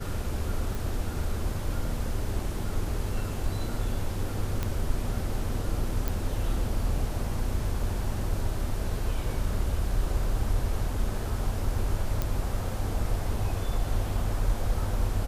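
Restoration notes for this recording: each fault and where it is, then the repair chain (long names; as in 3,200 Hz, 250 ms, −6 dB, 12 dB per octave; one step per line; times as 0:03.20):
0:00.75: click
0:04.63: click −15 dBFS
0:06.08: click
0:12.22: click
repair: click removal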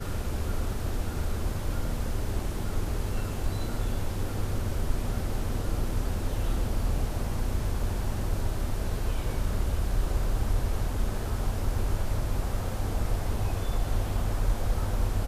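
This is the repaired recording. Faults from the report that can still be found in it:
none of them is left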